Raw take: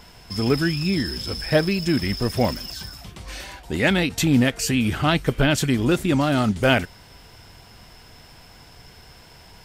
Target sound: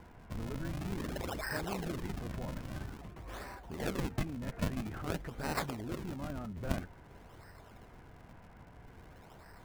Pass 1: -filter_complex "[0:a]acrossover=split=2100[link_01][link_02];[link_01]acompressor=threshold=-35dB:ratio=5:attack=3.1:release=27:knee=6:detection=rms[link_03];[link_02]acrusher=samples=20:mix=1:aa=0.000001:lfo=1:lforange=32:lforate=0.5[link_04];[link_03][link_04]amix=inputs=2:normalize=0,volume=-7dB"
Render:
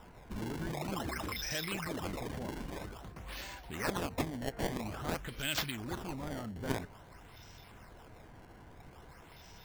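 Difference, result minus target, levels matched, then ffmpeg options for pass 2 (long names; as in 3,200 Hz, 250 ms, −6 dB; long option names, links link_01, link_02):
sample-and-hold swept by an LFO: distortion −18 dB
-filter_complex "[0:a]acrossover=split=2100[link_01][link_02];[link_01]acompressor=threshold=-35dB:ratio=5:attack=3.1:release=27:knee=6:detection=rms[link_03];[link_02]acrusher=samples=63:mix=1:aa=0.000001:lfo=1:lforange=101:lforate=0.5[link_04];[link_03][link_04]amix=inputs=2:normalize=0,volume=-7dB"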